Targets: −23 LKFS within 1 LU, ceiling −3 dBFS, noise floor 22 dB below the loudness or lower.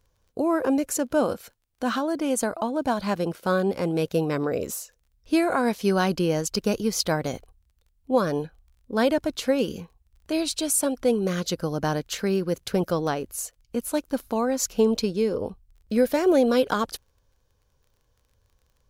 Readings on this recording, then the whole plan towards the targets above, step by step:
crackle rate 22 per second; integrated loudness −25.5 LKFS; sample peak −10.0 dBFS; target loudness −23.0 LKFS
→ click removal
level +2.5 dB

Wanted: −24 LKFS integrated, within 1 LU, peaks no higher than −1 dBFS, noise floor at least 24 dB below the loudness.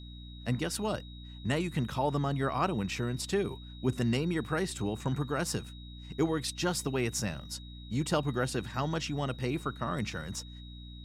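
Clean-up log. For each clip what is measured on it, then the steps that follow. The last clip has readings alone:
mains hum 60 Hz; hum harmonics up to 300 Hz; level of the hum −43 dBFS; interfering tone 3,800 Hz; level of the tone −52 dBFS; integrated loudness −33.0 LKFS; sample peak −16.0 dBFS; target loudness −24.0 LKFS
→ hum removal 60 Hz, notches 5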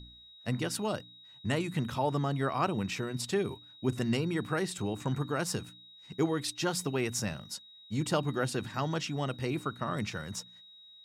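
mains hum none found; interfering tone 3,800 Hz; level of the tone −52 dBFS
→ notch filter 3,800 Hz, Q 30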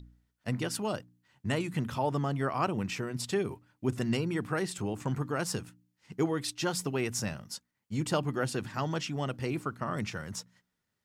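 interfering tone none found; integrated loudness −33.5 LKFS; sample peak −16.0 dBFS; target loudness −24.0 LKFS
→ level +9.5 dB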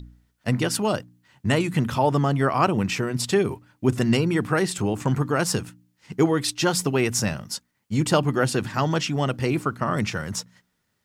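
integrated loudness −24.0 LKFS; sample peak −6.5 dBFS; background noise floor −73 dBFS

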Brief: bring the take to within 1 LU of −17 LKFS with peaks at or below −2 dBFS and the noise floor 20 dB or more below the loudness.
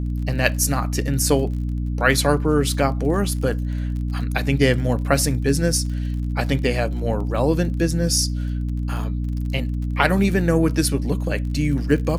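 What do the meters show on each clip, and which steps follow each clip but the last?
crackle rate 32 per second; mains hum 60 Hz; hum harmonics up to 300 Hz; level of the hum −21 dBFS; integrated loudness −21.5 LKFS; sample peak −1.0 dBFS; target loudness −17.0 LKFS
→ click removal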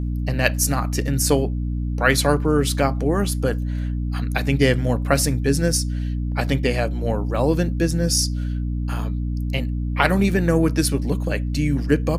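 crackle rate 0 per second; mains hum 60 Hz; hum harmonics up to 300 Hz; level of the hum −21 dBFS
→ hum removal 60 Hz, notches 5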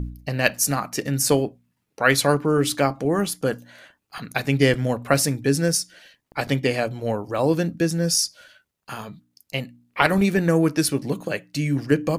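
mains hum none found; integrated loudness −22.0 LKFS; sample peak −2.0 dBFS; target loudness −17.0 LKFS
→ level +5 dB
brickwall limiter −2 dBFS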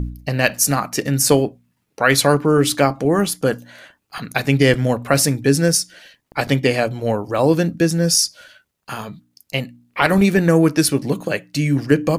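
integrated loudness −17.5 LKFS; sample peak −2.0 dBFS; background noise floor −70 dBFS

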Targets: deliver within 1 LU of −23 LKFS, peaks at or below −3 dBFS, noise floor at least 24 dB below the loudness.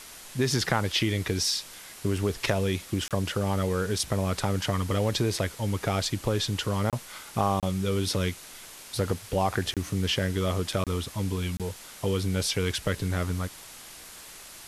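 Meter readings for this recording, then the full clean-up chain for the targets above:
number of dropouts 6; longest dropout 27 ms; background noise floor −46 dBFS; target noise floor −53 dBFS; integrated loudness −28.5 LKFS; sample peak −9.5 dBFS; target loudness −23.0 LKFS
→ repair the gap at 0:03.08/0:06.90/0:07.60/0:09.74/0:10.84/0:11.57, 27 ms
noise reduction from a noise print 7 dB
level +5.5 dB

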